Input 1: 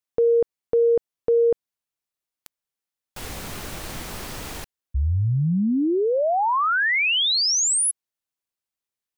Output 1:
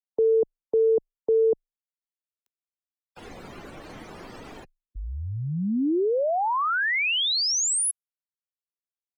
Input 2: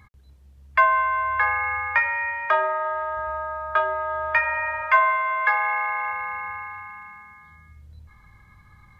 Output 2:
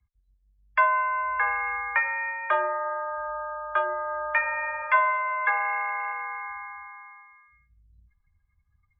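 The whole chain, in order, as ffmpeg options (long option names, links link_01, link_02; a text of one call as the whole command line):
ffmpeg -i in.wav -filter_complex "[0:a]afftdn=noise_reduction=28:noise_floor=-38,lowshelf=frequency=190:gain=-9.5,afreqshift=-20,acrossover=split=220|420|870[link_01][link_02][link_03][link_04];[link_02]acontrast=39[link_05];[link_01][link_05][link_03][link_04]amix=inputs=4:normalize=0,volume=-3.5dB" out.wav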